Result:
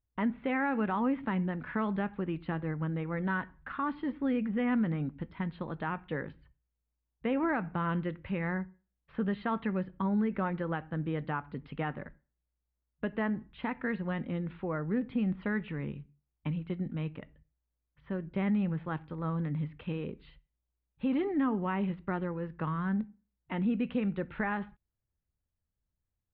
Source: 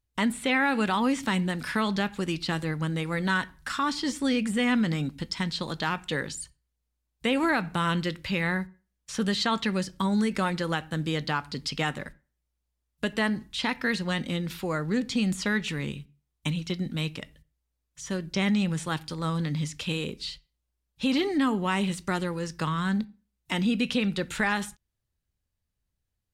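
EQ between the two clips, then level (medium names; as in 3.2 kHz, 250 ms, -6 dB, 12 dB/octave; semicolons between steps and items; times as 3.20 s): Gaussian low-pass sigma 4.3 samples; -4.0 dB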